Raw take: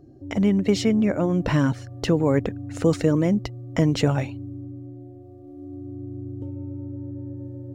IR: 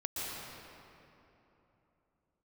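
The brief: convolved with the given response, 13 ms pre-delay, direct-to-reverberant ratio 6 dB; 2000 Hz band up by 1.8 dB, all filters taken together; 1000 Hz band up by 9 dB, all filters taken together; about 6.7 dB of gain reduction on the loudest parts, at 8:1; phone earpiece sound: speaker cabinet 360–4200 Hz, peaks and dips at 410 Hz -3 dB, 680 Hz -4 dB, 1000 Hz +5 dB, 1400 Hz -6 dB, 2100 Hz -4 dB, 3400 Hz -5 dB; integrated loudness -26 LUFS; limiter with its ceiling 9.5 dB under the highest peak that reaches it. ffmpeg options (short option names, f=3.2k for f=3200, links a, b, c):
-filter_complex "[0:a]equalizer=f=1k:t=o:g=8.5,equalizer=f=2k:t=o:g=4,acompressor=threshold=-20dB:ratio=8,alimiter=limit=-18dB:level=0:latency=1,asplit=2[a][b];[1:a]atrim=start_sample=2205,adelay=13[c];[b][c]afir=irnorm=-1:irlink=0,volume=-10dB[d];[a][d]amix=inputs=2:normalize=0,highpass=360,equalizer=f=410:t=q:w=4:g=-3,equalizer=f=680:t=q:w=4:g=-4,equalizer=f=1k:t=q:w=4:g=5,equalizer=f=1.4k:t=q:w=4:g=-6,equalizer=f=2.1k:t=q:w=4:g=-4,equalizer=f=3.4k:t=q:w=4:g=-5,lowpass=f=4.2k:w=0.5412,lowpass=f=4.2k:w=1.3066,volume=9dB"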